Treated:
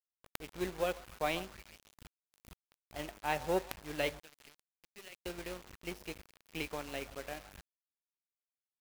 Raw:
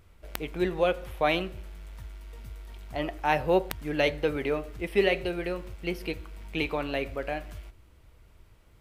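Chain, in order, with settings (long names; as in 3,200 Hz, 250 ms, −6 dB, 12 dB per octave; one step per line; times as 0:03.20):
0:04.19–0:05.26: first-order pre-emphasis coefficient 0.9
echo through a band-pass that steps 137 ms, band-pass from 940 Hz, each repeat 0.7 octaves, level −10 dB
bit reduction 6 bits
dead-zone distortion −34.5 dBFS
level −7.5 dB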